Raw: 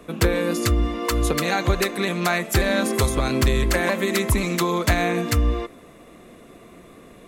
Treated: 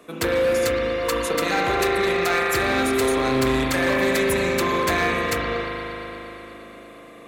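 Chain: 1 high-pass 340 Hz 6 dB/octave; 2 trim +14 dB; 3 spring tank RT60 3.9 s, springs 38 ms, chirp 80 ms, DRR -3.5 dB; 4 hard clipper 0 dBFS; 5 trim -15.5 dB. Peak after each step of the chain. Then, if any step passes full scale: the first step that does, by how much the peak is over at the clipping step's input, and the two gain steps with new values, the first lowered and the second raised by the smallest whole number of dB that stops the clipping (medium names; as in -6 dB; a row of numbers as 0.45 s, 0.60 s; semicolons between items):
-7.5 dBFS, +6.5 dBFS, +8.0 dBFS, 0.0 dBFS, -15.5 dBFS; step 2, 8.0 dB; step 2 +6 dB, step 5 -7.5 dB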